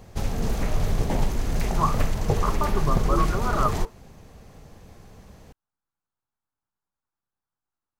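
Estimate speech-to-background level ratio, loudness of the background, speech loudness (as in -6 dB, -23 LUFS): -1.0 dB, -27.5 LUFS, -28.5 LUFS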